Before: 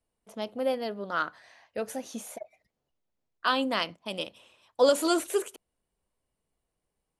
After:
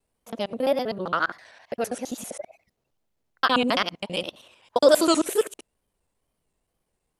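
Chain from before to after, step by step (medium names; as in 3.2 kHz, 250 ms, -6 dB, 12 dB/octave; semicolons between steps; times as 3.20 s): time reversed locally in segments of 66 ms; wow and flutter 130 cents; trim +5.5 dB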